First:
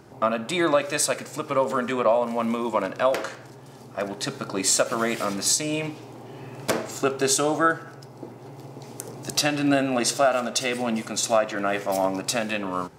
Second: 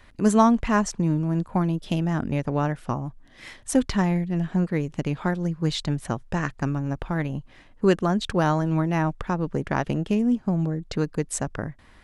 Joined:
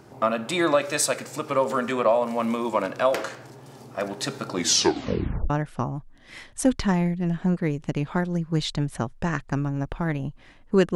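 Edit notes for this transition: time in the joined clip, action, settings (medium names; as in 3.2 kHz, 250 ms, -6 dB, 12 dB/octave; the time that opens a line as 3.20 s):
first
4.51 s: tape stop 0.99 s
5.50 s: go over to second from 2.60 s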